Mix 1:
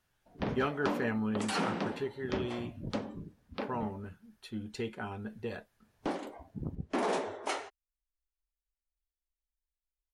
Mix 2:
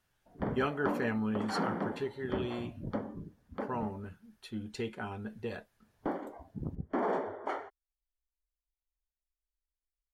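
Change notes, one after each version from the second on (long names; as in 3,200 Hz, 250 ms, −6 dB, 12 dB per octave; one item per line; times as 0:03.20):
background: add Savitzky-Golay smoothing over 41 samples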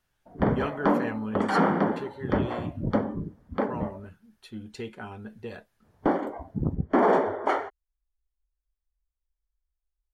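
background +11.0 dB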